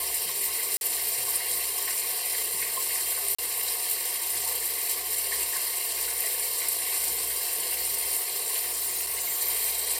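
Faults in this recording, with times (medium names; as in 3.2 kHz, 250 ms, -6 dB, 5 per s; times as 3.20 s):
0.77–0.81 s: dropout 41 ms
3.35–3.38 s: dropout 35 ms
8.60–9.42 s: clipped -25 dBFS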